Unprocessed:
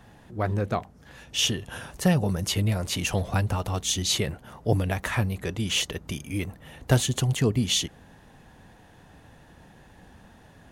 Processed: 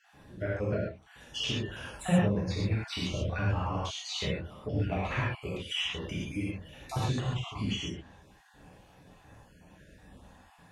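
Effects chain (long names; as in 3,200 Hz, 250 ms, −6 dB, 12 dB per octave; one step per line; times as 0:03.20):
time-frequency cells dropped at random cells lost 48%
treble cut that deepens with the level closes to 2,700 Hz, closed at −26.5 dBFS
reverb whose tail is shaped and stops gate 160 ms flat, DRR −7 dB
level −8 dB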